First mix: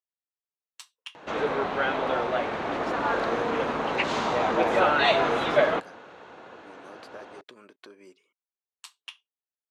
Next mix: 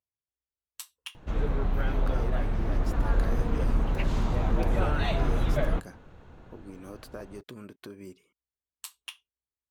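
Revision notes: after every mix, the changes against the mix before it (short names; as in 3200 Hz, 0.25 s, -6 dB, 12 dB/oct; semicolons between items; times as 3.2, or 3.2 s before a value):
background -12.0 dB; master: remove BPF 460–6100 Hz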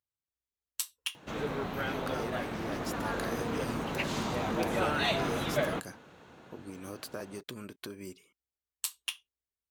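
background: add HPF 180 Hz 12 dB/oct; master: add high shelf 2200 Hz +8.5 dB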